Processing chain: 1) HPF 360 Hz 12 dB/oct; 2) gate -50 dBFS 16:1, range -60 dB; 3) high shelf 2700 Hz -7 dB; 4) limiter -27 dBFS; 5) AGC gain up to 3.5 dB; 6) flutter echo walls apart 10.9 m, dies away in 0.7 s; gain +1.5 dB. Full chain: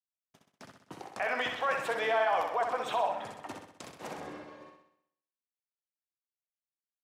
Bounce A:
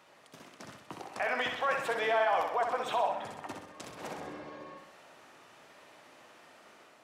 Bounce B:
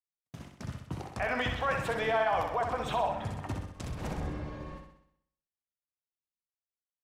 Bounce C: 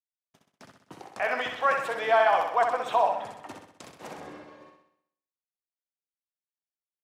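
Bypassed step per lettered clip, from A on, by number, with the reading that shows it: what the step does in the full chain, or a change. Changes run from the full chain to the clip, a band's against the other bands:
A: 2, momentary loudness spread change +1 LU; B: 1, 125 Hz band +19.0 dB; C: 4, crest factor change +2.0 dB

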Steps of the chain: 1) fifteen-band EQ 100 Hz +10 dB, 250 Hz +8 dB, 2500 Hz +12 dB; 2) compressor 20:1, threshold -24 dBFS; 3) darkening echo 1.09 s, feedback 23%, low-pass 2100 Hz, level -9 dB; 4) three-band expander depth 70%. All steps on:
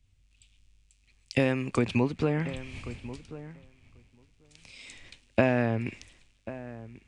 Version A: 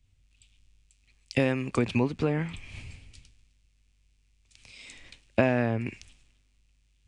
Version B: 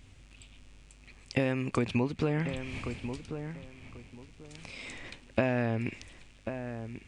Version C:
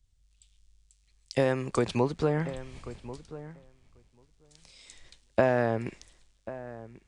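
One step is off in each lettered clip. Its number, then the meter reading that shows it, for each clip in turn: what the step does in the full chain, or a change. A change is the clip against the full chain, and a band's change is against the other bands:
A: 3, loudness change +1.5 LU; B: 4, 8 kHz band +2.0 dB; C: 1, 1 kHz band +4.5 dB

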